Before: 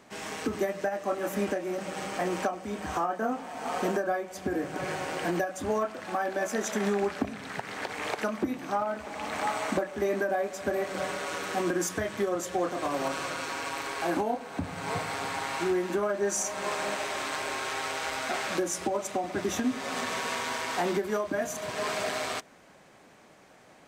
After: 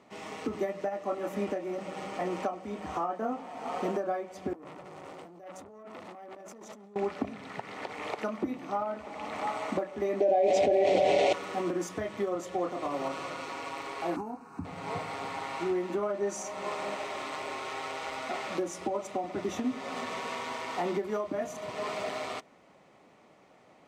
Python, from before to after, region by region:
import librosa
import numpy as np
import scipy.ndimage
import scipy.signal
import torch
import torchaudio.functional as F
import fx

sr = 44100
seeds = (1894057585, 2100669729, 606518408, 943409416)

y = fx.chain(x, sr, fx.peak_eq(hz=2000.0, db=-9.5, octaves=2.2),
    fx.over_compress(threshold_db=-41.0, ratio=-1.0),
    fx.transformer_sat(knee_hz=2500.0), at=(4.53, 6.96))
y = fx.chain(y, sr, fx.curve_eq(hz=(120.0, 200.0, 350.0, 710.0, 1200.0, 2300.0, 3500.0, 7000.0, 14000.0), db=(0, -5, 2, 7, -20, 1, 2, -3, -16)),
    fx.env_flatten(amount_pct=100), at=(10.2, 11.33))
y = fx.chain(y, sr, fx.peak_eq(hz=2000.0, db=-14.5, octaves=0.27),
    fx.fixed_phaser(hz=1400.0, stages=4), at=(14.16, 14.65))
y = fx.lowpass(y, sr, hz=2600.0, slope=6)
y = fx.low_shelf(y, sr, hz=72.0, db=-9.5)
y = fx.notch(y, sr, hz=1600.0, q=5.1)
y = y * 10.0 ** (-2.0 / 20.0)